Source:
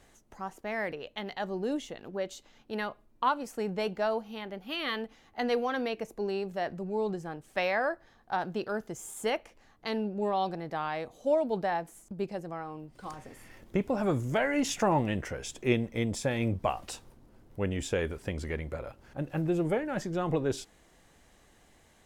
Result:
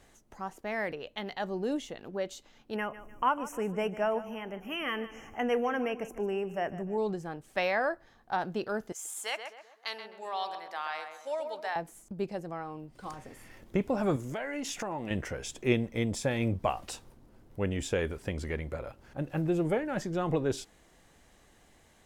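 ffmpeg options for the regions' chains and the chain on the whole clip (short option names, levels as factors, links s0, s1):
-filter_complex "[0:a]asettb=1/sr,asplit=3[s0][s1][s2];[s0]atrim=end=2.764[s3];[s1]atrim=start=2.76:end=6.98,asetpts=PTS-STARTPTS,afade=t=in:d=0.004:c=qsin,afade=t=out:st=4.216:d=0.004:c=qsin,acompressor=mode=upward:threshold=0.0141:ratio=2.5:attack=3.2:release=140:knee=2.83:detection=peak,asuperstop=centerf=4100:order=12:qfactor=1.8,aecho=1:1:150|300|450:0.178|0.0658|0.0243,atrim=end_sample=186102[s4];[s2]atrim=start=6.976[s5];[s3][s4]acrossfade=d=0.004:c1=hsin:c2=qsin[s6];[s6][s5]acrossfade=d=0.004:c1=qsin:c2=hsin,asettb=1/sr,asplit=3[s7][s8][s9];[s7]atrim=end=8.924[s10];[s8]atrim=start=8.92:end=11.76,asetpts=PTS-STARTPTS,afade=t=in:d=0.004:c=qsin,afade=t=out:st=2.836:d=0.004:c=qsin,highpass=970,equalizer=f=7300:t=o:w=2.3:g=3.5,asplit=2[s11][s12];[s12]adelay=129,lowpass=f=1800:p=1,volume=0.531,asplit=2[s13][s14];[s14]adelay=129,lowpass=f=1800:p=1,volume=0.45,asplit=2[s15][s16];[s16]adelay=129,lowpass=f=1800:p=1,volume=0.45,asplit=2[s17][s18];[s18]adelay=129,lowpass=f=1800:p=1,volume=0.45,asplit=2[s19][s20];[s20]adelay=129,lowpass=f=1800:p=1,volume=0.45[s21];[s11][s13][s15][s17][s19][s21]amix=inputs=6:normalize=0,atrim=end_sample=125244[s22];[s9]atrim=start=11.756[s23];[s10][s22]acrossfade=d=0.004:c1=hsin:c2=qsin[s24];[s24][s23]acrossfade=d=0.004:c1=qsin:c2=hsin,asettb=1/sr,asplit=3[s25][s26][s27];[s25]atrim=end=14.164[s28];[s26]atrim=start=14.16:end=15.11,asetpts=PTS-STARTPTS,afade=t=in:d=0.004:c=qsin,afade=t=out:st=0.946:d=0.004:c=qsin,equalizer=f=70:w=0.82:g=-14,acompressor=threshold=0.0224:ratio=4:attack=3.2:release=140:knee=1:detection=peak[s29];[s27]atrim=start=15.106[s30];[s28][s29]acrossfade=d=0.004:c1=hsin:c2=qsin[s31];[s31][s30]acrossfade=d=0.004:c1=qsin:c2=hsin"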